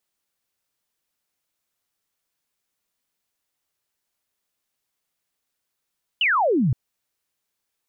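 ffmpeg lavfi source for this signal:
-f lavfi -i "aevalsrc='0.15*clip(t/0.002,0,1)*clip((0.52-t)/0.002,0,1)*sin(2*PI*3100*0.52/log(110/3100)*(exp(log(110/3100)*t/0.52)-1))':d=0.52:s=44100"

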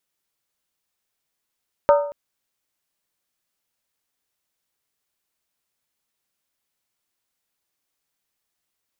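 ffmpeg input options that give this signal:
-f lavfi -i "aevalsrc='0.355*pow(10,-3*t/0.58)*sin(2*PI*578*t)+0.188*pow(10,-3*t/0.459)*sin(2*PI*921.3*t)+0.1*pow(10,-3*t/0.397)*sin(2*PI*1234.6*t)+0.0531*pow(10,-3*t/0.383)*sin(2*PI*1327.1*t)+0.0282*pow(10,-3*t/0.356)*sin(2*PI*1533.4*t)':d=0.23:s=44100"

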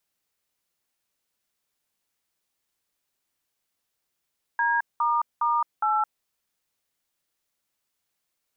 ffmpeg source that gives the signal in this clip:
-f lavfi -i "aevalsrc='0.0708*clip(min(mod(t,0.411),0.216-mod(t,0.411))/0.002,0,1)*(eq(floor(t/0.411),0)*(sin(2*PI*941*mod(t,0.411))+sin(2*PI*1633*mod(t,0.411)))+eq(floor(t/0.411),1)*(sin(2*PI*941*mod(t,0.411))+sin(2*PI*1209*mod(t,0.411)))+eq(floor(t/0.411),2)*(sin(2*PI*941*mod(t,0.411))+sin(2*PI*1209*mod(t,0.411)))+eq(floor(t/0.411),3)*(sin(2*PI*852*mod(t,0.411))+sin(2*PI*1336*mod(t,0.411))))':d=1.644:s=44100"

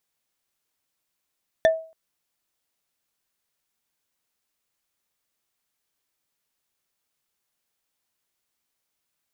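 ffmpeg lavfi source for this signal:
-f lavfi -i "aevalsrc='0.282*pow(10,-3*t/0.39)*sin(2*PI*646*t)+0.126*pow(10,-3*t/0.115)*sin(2*PI*1781*t)+0.0562*pow(10,-3*t/0.051)*sin(2*PI*3491*t)+0.0251*pow(10,-3*t/0.028)*sin(2*PI*5770.7*t)+0.0112*pow(10,-3*t/0.017)*sin(2*PI*8617.6*t)':d=0.28:s=44100"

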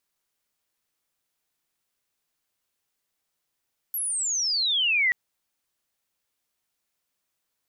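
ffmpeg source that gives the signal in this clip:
-f lavfi -i "aevalsrc='pow(10,(-26+7.5*t/1.18)/20)*sin(2*PI*12000*1.18/log(1900/12000)*(exp(log(1900/12000)*t/1.18)-1))':d=1.18:s=44100"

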